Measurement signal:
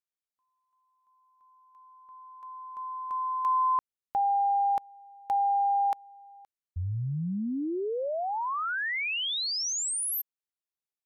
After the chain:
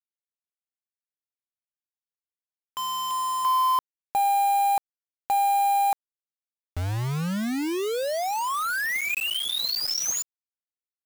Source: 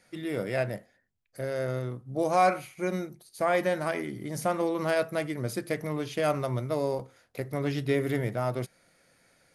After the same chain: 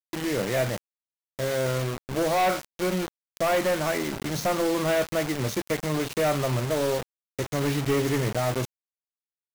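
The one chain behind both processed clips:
hearing-aid frequency compression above 2,100 Hz 1.5 to 1
hard clipping −25.5 dBFS
bit-depth reduction 6 bits, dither none
level +4.5 dB

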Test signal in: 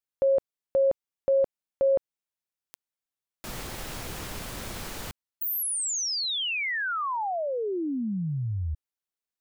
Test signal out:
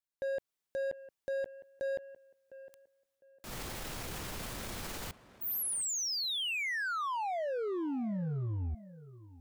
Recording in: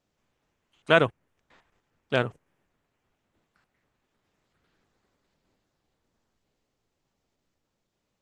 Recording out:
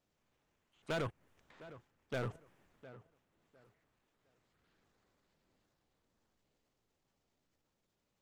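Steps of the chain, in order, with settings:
transient designer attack −5 dB, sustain +8 dB
downward compressor 3 to 1, threshold −26 dBFS
hard clipping −28 dBFS
on a send: tape delay 706 ms, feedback 27%, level −13 dB, low-pass 1,800 Hz
on the sum: level −4.5 dB

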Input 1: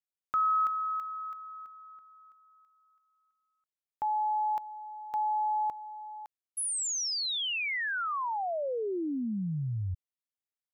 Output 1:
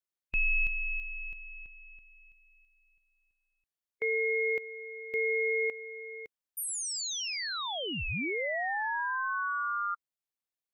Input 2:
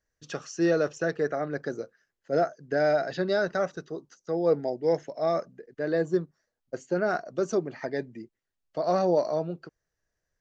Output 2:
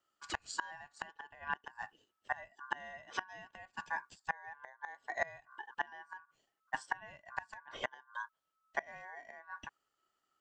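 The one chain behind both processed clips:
harmonic and percussive parts rebalanced harmonic +3 dB
gate with flip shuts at −19 dBFS, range −26 dB
ring modulation 1,300 Hz

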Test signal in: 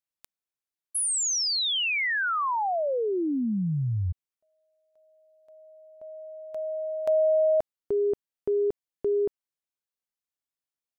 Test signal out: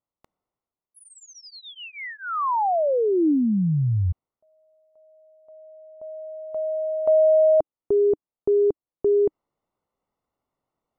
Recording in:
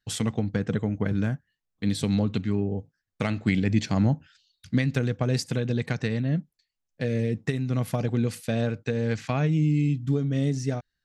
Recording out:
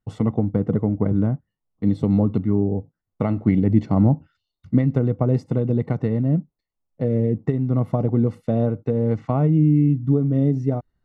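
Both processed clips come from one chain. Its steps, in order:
Savitzky-Golay smoothing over 65 samples
reversed playback
upward compression 1.5 to 1, threshold −55 dBFS
reversed playback
dynamic equaliser 310 Hz, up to +3 dB, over −44 dBFS, Q 3.9
level +5.5 dB

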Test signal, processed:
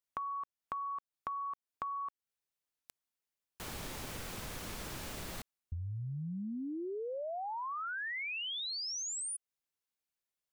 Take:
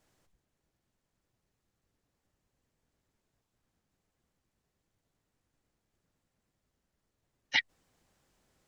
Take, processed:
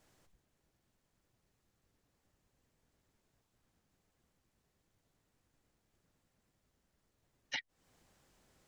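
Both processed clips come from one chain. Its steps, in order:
downward compressor 12 to 1, threshold −40 dBFS
level +2.5 dB

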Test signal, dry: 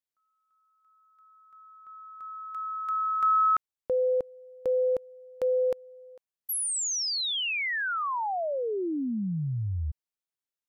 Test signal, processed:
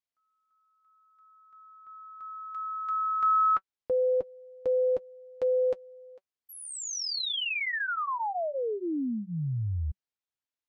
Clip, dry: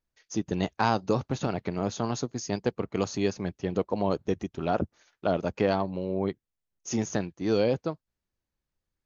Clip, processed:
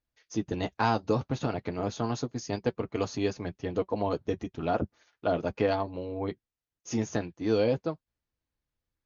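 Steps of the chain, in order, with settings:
low-pass filter 5,800 Hz 12 dB per octave
notch comb filter 190 Hz

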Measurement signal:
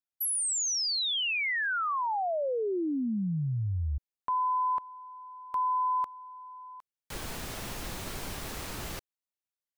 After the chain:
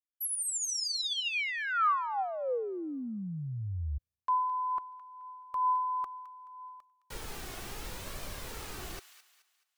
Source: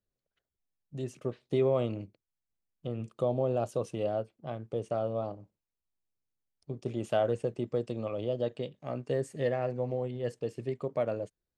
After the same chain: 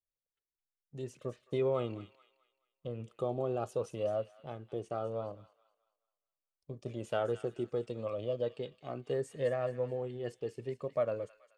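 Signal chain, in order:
noise gate −54 dBFS, range −11 dB
dynamic equaliser 1,300 Hz, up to +7 dB, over −48 dBFS, Q 3.5
flanger 0.73 Hz, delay 1.6 ms, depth 1.2 ms, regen +46%
on a send: delay with a high-pass on its return 214 ms, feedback 37%, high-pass 1,600 Hz, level −11 dB

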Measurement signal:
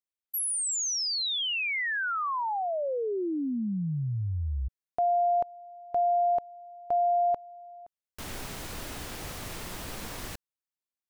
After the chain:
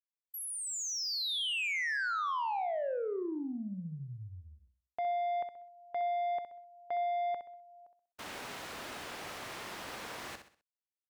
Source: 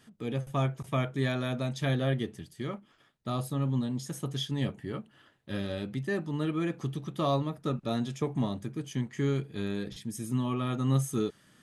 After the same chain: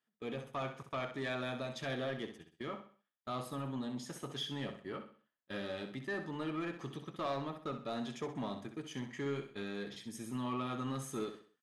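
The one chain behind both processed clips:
high-pass filter 720 Hz 6 dB per octave
noise gate −49 dBFS, range −24 dB
low-pass filter 2,400 Hz 6 dB per octave
in parallel at +2 dB: brickwall limiter −31.5 dBFS
on the sum: soft clipping −25.5 dBFS
on a send: repeating echo 64 ms, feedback 37%, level −9 dB
on the sum: level −5 dB

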